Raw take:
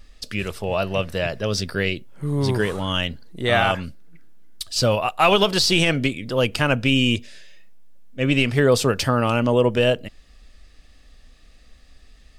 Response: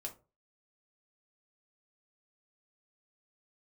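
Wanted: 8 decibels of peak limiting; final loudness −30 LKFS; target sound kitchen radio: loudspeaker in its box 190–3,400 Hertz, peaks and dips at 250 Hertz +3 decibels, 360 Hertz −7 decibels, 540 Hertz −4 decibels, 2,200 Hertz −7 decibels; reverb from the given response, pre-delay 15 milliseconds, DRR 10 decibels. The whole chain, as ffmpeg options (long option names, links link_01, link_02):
-filter_complex "[0:a]alimiter=limit=-12.5dB:level=0:latency=1,asplit=2[link_01][link_02];[1:a]atrim=start_sample=2205,adelay=15[link_03];[link_02][link_03]afir=irnorm=-1:irlink=0,volume=-8dB[link_04];[link_01][link_04]amix=inputs=2:normalize=0,highpass=190,equalizer=frequency=250:width_type=q:width=4:gain=3,equalizer=frequency=360:width_type=q:width=4:gain=-7,equalizer=frequency=540:width_type=q:width=4:gain=-4,equalizer=frequency=2200:width_type=q:width=4:gain=-7,lowpass=frequency=3400:width=0.5412,lowpass=frequency=3400:width=1.3066,volume=-3.5dB"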